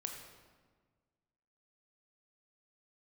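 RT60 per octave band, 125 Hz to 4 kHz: 1.9, 1.8, 1.6, 1.4, 1.2, 1.0 s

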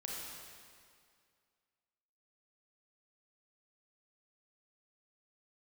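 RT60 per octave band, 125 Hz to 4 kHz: 2.1, 2.2, 2.2, 2.2, 2.1, 1.9 s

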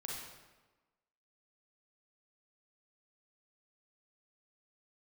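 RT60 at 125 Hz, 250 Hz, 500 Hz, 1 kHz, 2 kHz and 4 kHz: 1.1, 1.3, 1.2, 1.2, 1.0, 0.90 s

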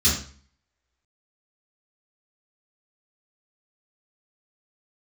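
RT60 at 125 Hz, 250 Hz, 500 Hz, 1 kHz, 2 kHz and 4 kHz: 0.55, 0.55, 0.45, 0.45, 0.45, 0.40 s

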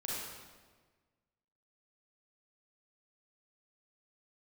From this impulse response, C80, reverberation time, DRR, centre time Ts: 0.0 dB, 1.4 s, -6.0 dB, 0.106 s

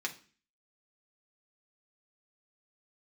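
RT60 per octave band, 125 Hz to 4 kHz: 0.55, 0.55, 0.40, 0.40, 0.40, 0.40 s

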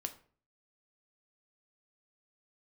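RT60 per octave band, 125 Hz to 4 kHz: 0.60, 0.55, 0.50, 0.40, 0.40, 0.30 s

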